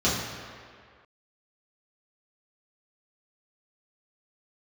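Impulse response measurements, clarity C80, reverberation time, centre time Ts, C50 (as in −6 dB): 3.5 dB, 2.0 s, 88 ms, 1.0 dB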